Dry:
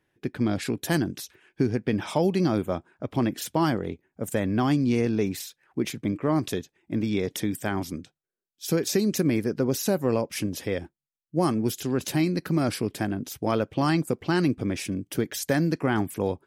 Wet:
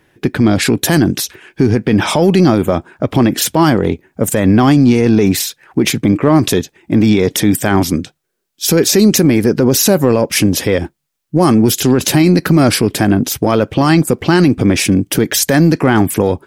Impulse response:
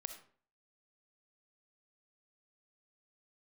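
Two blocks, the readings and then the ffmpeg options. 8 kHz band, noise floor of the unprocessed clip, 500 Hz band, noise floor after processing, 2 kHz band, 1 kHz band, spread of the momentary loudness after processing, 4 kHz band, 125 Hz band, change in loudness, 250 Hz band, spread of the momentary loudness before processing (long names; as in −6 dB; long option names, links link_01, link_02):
+18.0 dB, below −85 dBFS, +13.5 dB, −68 dBFS, +14.5 dB, +13.0 dB, 8 LU, +17.0 dB, +14.5 dB, +14.5 dB, +14.5 dB, 8 LU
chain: -filter_complex "[0:a]asplit=2[link_01][link_02];[link_02]asoftclip=type=tanh:threshold=-28dB,volume=-10.5dB[link_03];[link_01][link_03]amix=inputs=2:normalize=0,alimiter=level_in=18dB:limit=-1dB:release=50:level=0:latency=1,volume=-1dB"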